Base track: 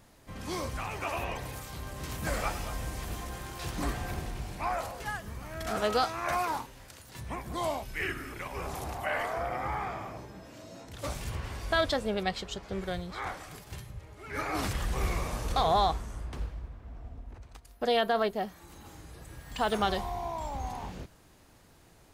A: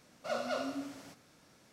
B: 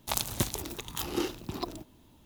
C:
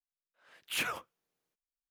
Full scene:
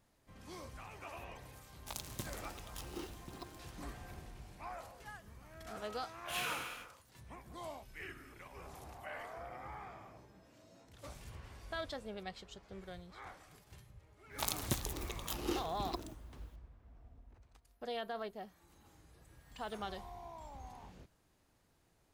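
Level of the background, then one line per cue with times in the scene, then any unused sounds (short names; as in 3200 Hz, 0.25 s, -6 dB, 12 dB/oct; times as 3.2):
base track -14.5 dB
1.79 add B -14.5 dB + careless resampling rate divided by 2×, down none, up hold
5.57 add C -11 dB + non-linear reverb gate 0.48 s falling, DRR -6.5 dB
14.31 add B -6.5 dB
not used: A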